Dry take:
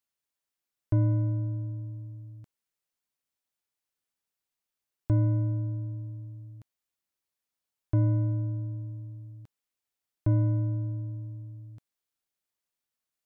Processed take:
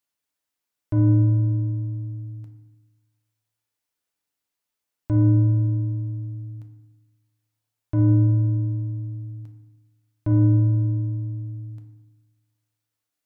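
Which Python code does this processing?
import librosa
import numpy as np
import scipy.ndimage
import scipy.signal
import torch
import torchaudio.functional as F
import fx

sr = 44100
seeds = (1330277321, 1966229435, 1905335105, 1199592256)

p1 = fx.low_shelf(x, sr, hz=110.0, db=-4.0)
p2 = 10.0 ** (-30.5 / 20.0) * np.tanh(p1 / 10.0 ** (-30.5 / 20.0))
p3 = p1 + (p2 * librosa.db_to_amplitude(-7.0))
y = fx.rev_fdn(p3, sr, rt60_s=0.96, lf_ratio=1.35, hf_ratio=0.45, size_ms=20.0, drr_db=4.5)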